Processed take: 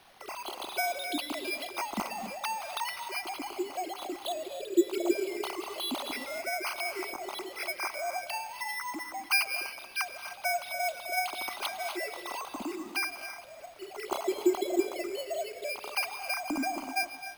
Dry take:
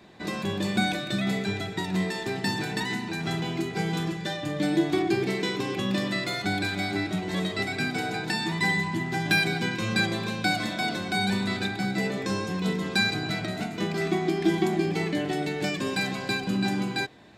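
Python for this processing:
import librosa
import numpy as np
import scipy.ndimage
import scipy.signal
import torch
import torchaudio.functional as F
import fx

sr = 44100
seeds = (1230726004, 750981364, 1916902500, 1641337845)

y = fx.sine_speech(x, sr)
y = fx.peak_eq(y, sr, hz=220.0, db=-4.0, octaves=2.0)
y = fx.rider(y, sr, range_db=5, speed_s=0.5)
y = fx.quant_dither(y, sr, seeds[0], bits=10, dither='triangular')
y = fx.fixed_phaser(y, sr, hz=470.0, stages=6)
y = y + 10.0 ** (-16.0 / 20.0) * np.pad(y, (int(256 * sr / 1000.0), 0))[:len(y)]
y = fx.rev_gated(y, sr, seeds[1], gate_ms=320, shape='rising', drr_db=9.5)
y = np.repeat(y[::6], 6)[:len(y)]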